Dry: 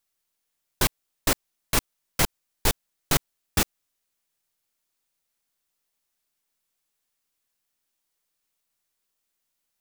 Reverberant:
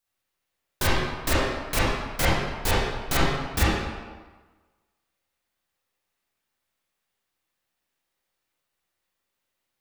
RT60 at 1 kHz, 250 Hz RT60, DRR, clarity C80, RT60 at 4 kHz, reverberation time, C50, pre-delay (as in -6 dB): 1.4 s, 1.3 s, -9.0 dB, 0.5 dB, 1.0 s, 1.3 s, -3.0 dB, 27 ms